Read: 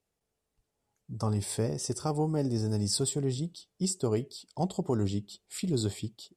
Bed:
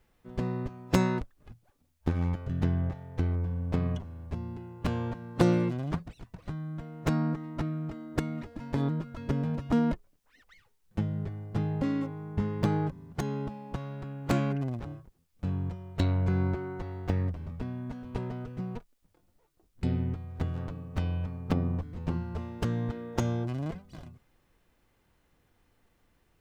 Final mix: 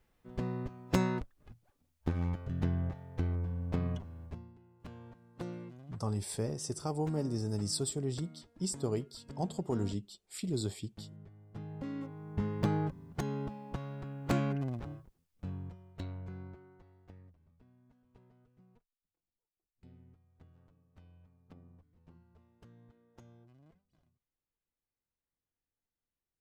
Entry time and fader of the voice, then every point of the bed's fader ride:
4.80 s, −5.0 dB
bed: 0:04.25 −4.5 dB
0:04.54 −18.5 dB
0:11.30 −18.5 dB
0:12.45 −3.5 dB
0:14.96 −3.5 dB
0:17.36 −28.5 dB

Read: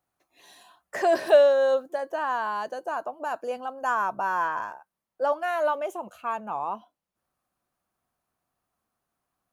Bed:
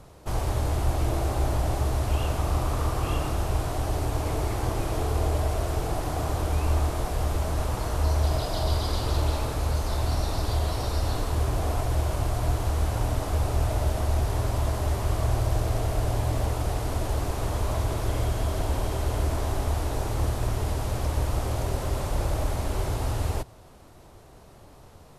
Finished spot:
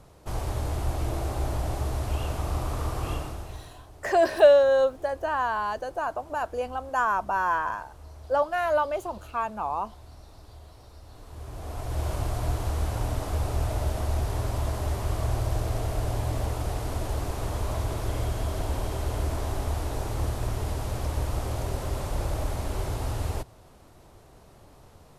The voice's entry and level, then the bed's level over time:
3.10 s, +1.0 dB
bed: 0:03.12 −3.5 dB
0:03.87 −22 dB
0:11.07 −22 dB
0:12.07 −2.5 dB

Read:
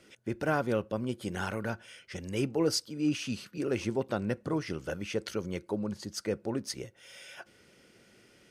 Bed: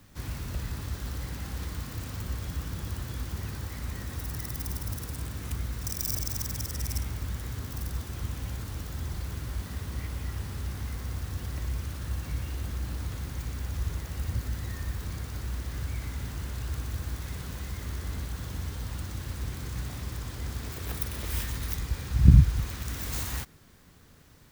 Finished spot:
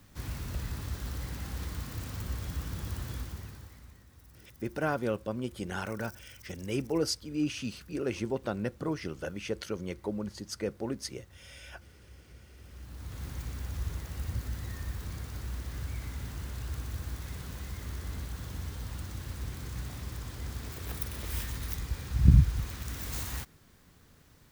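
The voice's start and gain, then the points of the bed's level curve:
4.35 s, −1.5 dB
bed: 0:03.14 −2 dB
0:04.06 −21 dB
0:12.50 −21 dB
0:13.25 −3.5 dB

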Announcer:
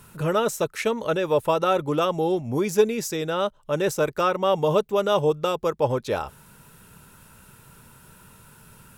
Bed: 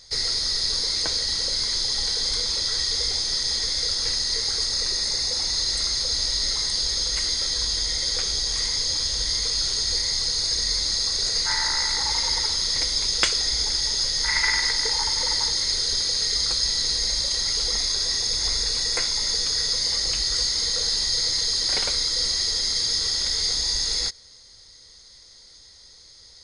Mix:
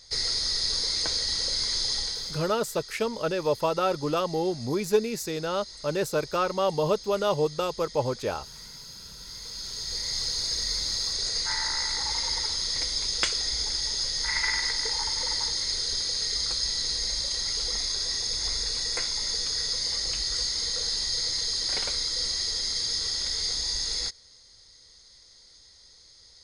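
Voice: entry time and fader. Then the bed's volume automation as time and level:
2.15 s, −4.0 dB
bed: 0:01.94 −3 dB
0:02.65 −19.5 dB
0:09.14 −19.5 dB
0:10.18 −5 dB

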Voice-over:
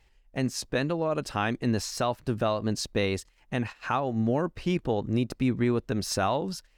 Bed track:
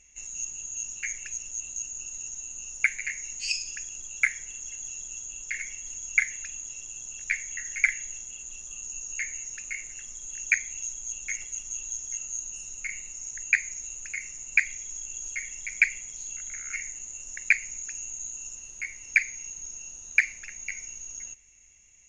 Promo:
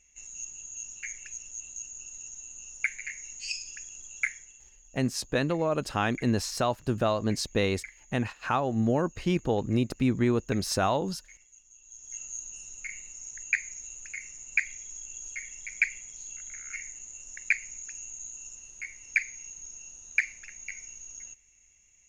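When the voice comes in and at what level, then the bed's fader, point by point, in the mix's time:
4.60 s, +0.5 dB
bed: 0:04.28 −5.5 dB
0:04.78 −21 dB
0:11.78 −21 dB
0:12.19 −4.5 dB

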